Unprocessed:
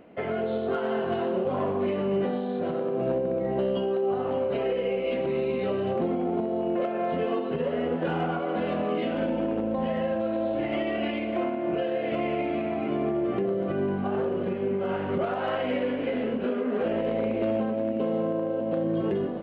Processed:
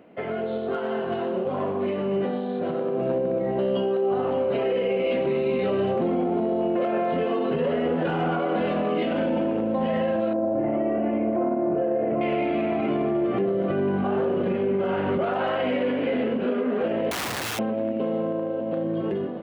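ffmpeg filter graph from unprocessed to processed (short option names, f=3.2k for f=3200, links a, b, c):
-filter_complex "[0:a]asettb=1/sr,asplit=3[a][b][c];[a]atrim=end=10.334[d];[b]atrim=start=10.33:end=12.21,asetpts=PTS-STARTPTS,afade=t=in:d=0.004:c=qsin,afade=t=out:st=1.876:d=0.004:c=qsin,lowpass=1.1k,aemphasis=mode=reproduction:type=75kf[e];[c]atrim=start=12.206[f];[d][e]acrossfade=d=0.004:c1=hsin:c2=qsin[g];[g][f]acrossfade=d=0.004:c1=qsin:c2=hsin,asettb=1/sr,asplit=3[h][i][j];[h]atrim=end=17.114[k];[i]atrim=start=17.11:end=17.59,asetpts=PTS-STARTPTS,afade=t=in:d=0.004:c=qsin,afade=t=out:st=0.476:d=0.004:c=qsin,equalizer=f=330:t=o:w=0.31:g=-10.5,aeval=exprs='(mod(21.1*val(0)+1,2)-1)/21.1':c=same[l];[j]atrim=start=17.586[m];[k][l]acrossfade=d=0.004:c1=hsin:c2=qsin[n];[n][m]acrossfade=d=0.004:c1=qsin:c2=hsin,highpass=91,dynaudnorm=f=760:g=11:m=8dB,alimiter=limit=-17dB:level=0:latency=1:release=24"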